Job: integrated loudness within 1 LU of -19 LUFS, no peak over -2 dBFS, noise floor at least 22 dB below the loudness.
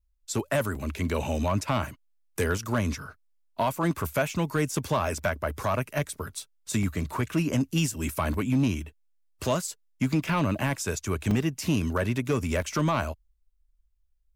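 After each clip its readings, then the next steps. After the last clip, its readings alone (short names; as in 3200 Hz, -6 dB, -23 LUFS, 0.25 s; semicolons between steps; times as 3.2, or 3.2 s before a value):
clipped 0.6%; flat tops at -17.5 dBFS; dropouts 7; longest dropout 2.5 ms; loudness -28.5 LUFS; peak -17.5 dBFS; loudness target -19.0 LUFS
-> clip repair -17.5 dBFS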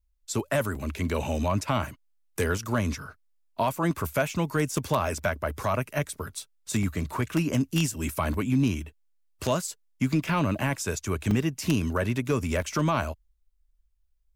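clipped 0.0%; dropouts 7; longest dropout 2.5 ms
-> interpolate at 0.75/2.58/6.83/8.34/10.29/11.31/12.62, 2.5 ms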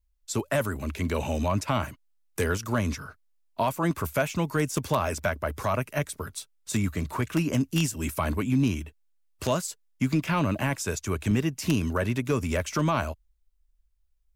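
dropouts 0; loudness -28.0 LUFS; peak -8.5 dBFS; loudness target -19.0 LUFS
-> gain +9 dB; limiter -2 dBFS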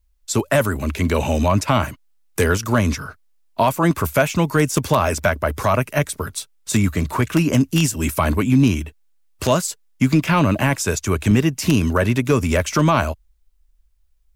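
loudness -19.5 LUFS; peak -2.0 dBFS; noise floor -58 dBFS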